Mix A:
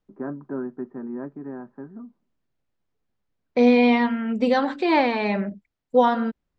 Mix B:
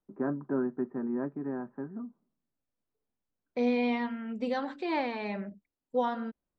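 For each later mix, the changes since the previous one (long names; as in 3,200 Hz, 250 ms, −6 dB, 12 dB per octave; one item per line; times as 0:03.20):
second voice −11.5 dB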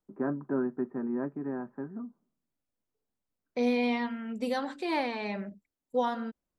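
master: remove high-frequency loss of the air 140 metres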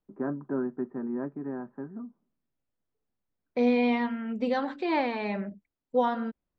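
second voice +4.0 dB
master: add high-frequency loss of the air 200 metres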